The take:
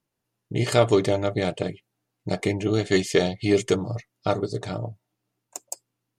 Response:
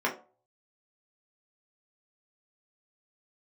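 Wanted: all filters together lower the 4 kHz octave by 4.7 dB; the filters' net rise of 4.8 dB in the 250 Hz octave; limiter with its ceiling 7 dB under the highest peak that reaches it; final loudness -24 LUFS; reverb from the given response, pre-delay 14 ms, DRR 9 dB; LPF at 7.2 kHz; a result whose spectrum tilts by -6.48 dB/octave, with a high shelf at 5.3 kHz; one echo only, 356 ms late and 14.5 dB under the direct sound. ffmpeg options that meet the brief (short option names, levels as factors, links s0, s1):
-filter_complex "[0:a]lowpass=7200,equalizer=f=250:t=o:g=7,equalizer=f=4000:t=o:g=-3.5,highshelf=f=5300:g=-5.5,alimiter=limit=0.299:level=0:latency=1,aecho=1:1:356:0.188,asplit=2[s0][s1];[1:a]atrim=start_sample=2205,adelay=14[s2];[s1][s2]afir=irnorm=-1:irlink=0,volume=0.1[s3];[s0][s3]amix=inputs=2:normalize=0,volume=0.944"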